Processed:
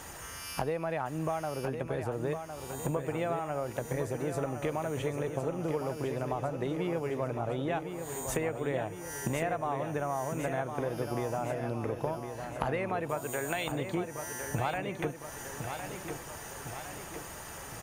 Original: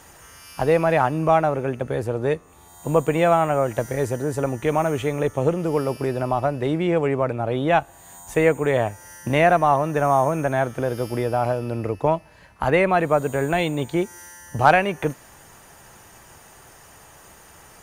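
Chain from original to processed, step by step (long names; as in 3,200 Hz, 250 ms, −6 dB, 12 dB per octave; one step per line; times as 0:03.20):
0:13.09–0:13.72: spectral tilt +3 dB per octave
downward compressor 8 to 1, threshold −33 dBFS, peak gain reduction 23 dB
on a send: repeating echo 1,058 ms, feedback 58%, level −7.5 dB
on the sum: level +2.5 dB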